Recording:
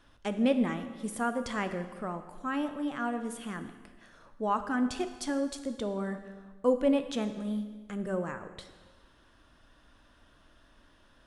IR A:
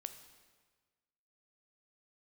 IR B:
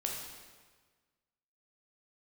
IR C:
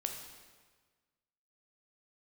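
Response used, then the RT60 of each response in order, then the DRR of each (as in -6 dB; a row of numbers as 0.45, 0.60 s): A; 1.5, 1.5, 1.5 s; 8.5, -1.0, 3.0 dB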